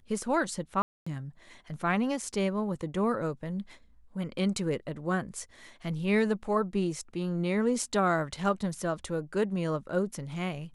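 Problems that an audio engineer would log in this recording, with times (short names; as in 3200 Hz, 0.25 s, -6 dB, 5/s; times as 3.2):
0.82–1.06 gap 0.245 s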